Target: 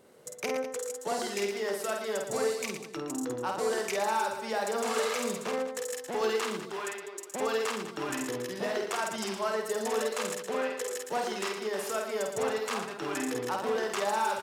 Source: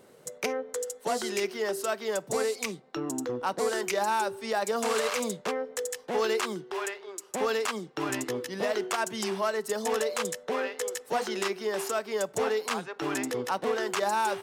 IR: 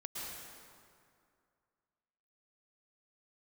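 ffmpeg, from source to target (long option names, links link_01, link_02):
-af "aecho=1:1:50|115|199.5|309.4|452.2:0.631|0.398|0.251|0.158|0.1,volume=-4dB"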